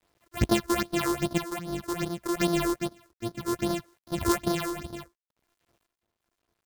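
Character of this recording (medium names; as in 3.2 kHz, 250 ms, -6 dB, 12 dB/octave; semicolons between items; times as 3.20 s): a buzz of ramps at a fixed pitch in blocks of 128 samples; phasing stages 6, 2.5 Hz, lowest notch 160–2500 Hz; a quantiser's noise floor 12-bit, dither none; random-step tremolo 2.9 Hz, depth 75%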